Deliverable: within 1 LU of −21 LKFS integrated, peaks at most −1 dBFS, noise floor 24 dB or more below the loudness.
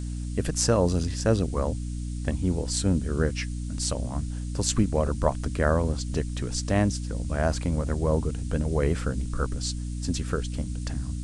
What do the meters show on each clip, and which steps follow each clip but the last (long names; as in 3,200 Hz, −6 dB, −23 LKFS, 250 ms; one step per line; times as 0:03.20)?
mains hum 60 Hz; hum harmonics up to 300 Hz; level of the hum −29 dBFS; background noise floor −32 dBFS; target noise floor −52 dBFS; integrated loudness −27.5 LKFS; sample peak −5.5 dBFS; target loudness −21.0 LKFS
→ mains-hum notches 60/120/180/240/300 Hz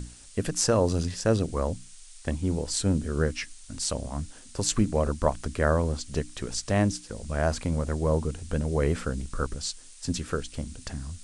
mains hum none found; background noise floor −49 dBFS; target noise floor −53 dBFS
→ noise reduction from a noise print 6 dB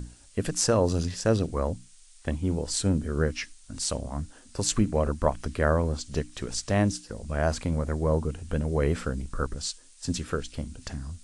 background noise floor −53 dBFS; integrated loudness −28.5 LKFS; sample peak −5.5 dBFS; target loudness −21.0 LKFS
→ level +7.5 dB
brickwall limiter −1 dBFS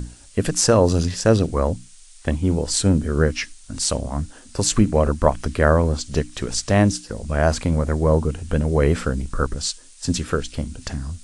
integrated loudness −21.0 LKFS; sample peak −1.0 dBFS; background noise floor −46 dBFS